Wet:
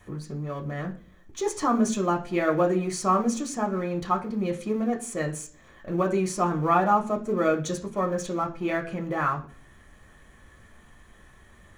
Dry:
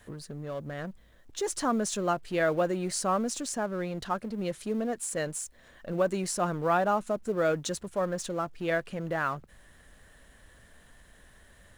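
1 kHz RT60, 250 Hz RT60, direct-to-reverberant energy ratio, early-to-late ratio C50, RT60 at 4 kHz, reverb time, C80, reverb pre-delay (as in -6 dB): 0.40 s, 0.65 s, 1.5 dB, 14.0 dB, 0.45 s, 0.45 s, 18.5 dB, 3 ms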